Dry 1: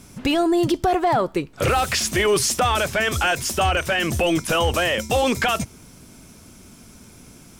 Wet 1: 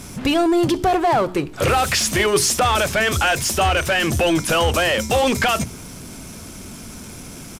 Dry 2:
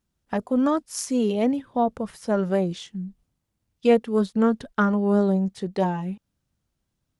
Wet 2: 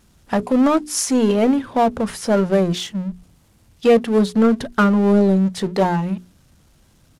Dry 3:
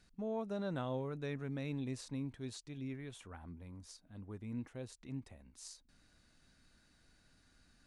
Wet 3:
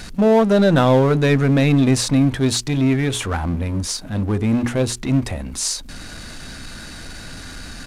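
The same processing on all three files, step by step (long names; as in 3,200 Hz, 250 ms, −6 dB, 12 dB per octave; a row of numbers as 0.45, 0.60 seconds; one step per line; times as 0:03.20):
power curve on the samples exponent 0.7
downsampling to 32,000 Hz
mains-hum notches 60/120/180/240/300/360/420 Hz
loudness normalisation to −18 LKFS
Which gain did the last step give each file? +1.0, +3.0, +23.0 decibels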